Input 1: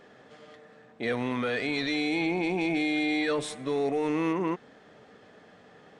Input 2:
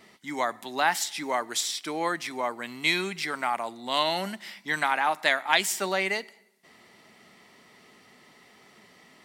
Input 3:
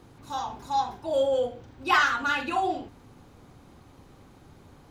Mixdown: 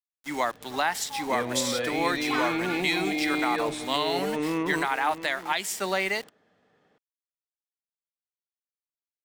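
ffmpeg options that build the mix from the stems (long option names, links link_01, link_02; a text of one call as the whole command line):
ffmpeg -i stem1.wav -i stem2.wav -i stem3.wav -filter_complex "[0:a]adelay=300,volume=-0.5dB,asplit=2[link_01][link_02];[link_02]volume=-12dB[link_03];[1:a]aeval=exprs='val(0)*gte(abs(val(0)),0.0112)':channel_layout=same,volume=1.5dB[link_04];[2:a]adelay=400,volume=-9dB[link_05];[link_03]aecho=0:1:685:1[link_06];[link_01][link_04][link_05][link_06]amix=inputs=4:normalize=0,alimiter=limit=-13.5dB:level=0:latency=1:release=415" out.wav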